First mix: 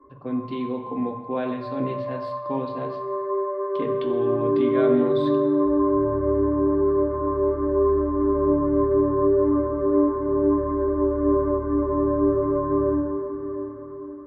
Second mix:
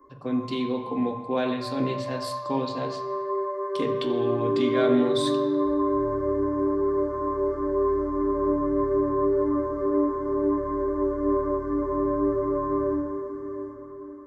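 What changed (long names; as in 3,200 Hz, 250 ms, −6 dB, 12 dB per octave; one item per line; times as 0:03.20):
background: send −6.5 dB
master: remove high-frequency loss of the air 390 metres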